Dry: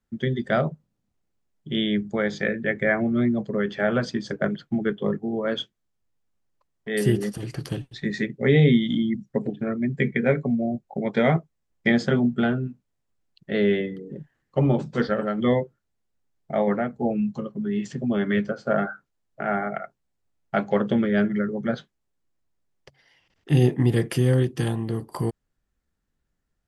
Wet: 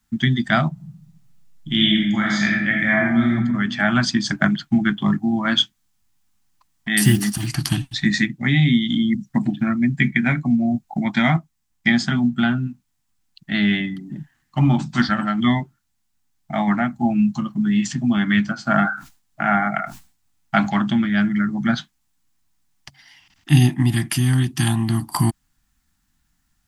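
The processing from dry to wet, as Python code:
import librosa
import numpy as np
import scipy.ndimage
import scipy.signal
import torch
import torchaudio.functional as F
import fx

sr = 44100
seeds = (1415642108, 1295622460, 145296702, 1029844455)

y = fx.reverb_throw(x, sr, start_s=0.72, length_s=2.57, rt60_s=1.0, drr_db=-3.0)
y = fx.block_float(y, sr, bits=7, at=(7.04, 7.5))
y = fx.sustainer(y, sr, db_per_s=130.0, at=(18.71, 21.65))
y = scipy.signal.sosfilt(scipy.signal.cheby1(2, 1.0, [280.0, 790.0], 'bandstop', fs=sr, output='sos'), y)
y = fx.rider(y, sr, range_db=4, speed_s=0.5)
y = fx.high_shelf(y, sr, hz=3000.0, db=10.0)
y = y * librosa.db_to_amplitude(5.5)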